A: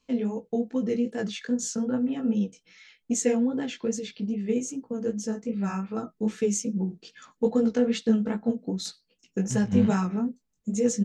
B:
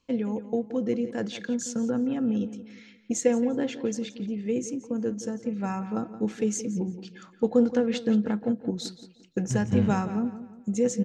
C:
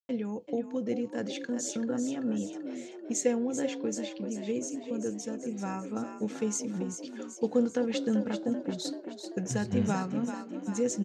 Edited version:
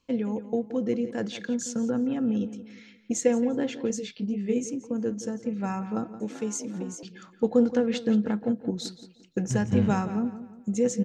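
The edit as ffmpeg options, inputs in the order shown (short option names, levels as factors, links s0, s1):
-filter_complex "[1:a]asplit=3[s0][s1][s2];[s0]atrim=end=3.902[s3];[0:a]atrim=start=3.898:end=4.642[s4];[s1]atrim=start=4.638:end=6.202[s5];[2:a]atrim=start=6.198:end=7.032[s6];[s2]atrim=start=7.028[s7];[s3][s4]acrossfade=d=0.004:c1=hsin:c2=hsin[s8];[s8][s5]acrossfade=d=0.004:c1=hsin:c2=hsin[s9];[s9][s6]acrossfade=d=0.004:c1=hsin:c2=hsin[s10];[s10][s7]acrossfade=d=0.004:c1=hsin:c2=hsin"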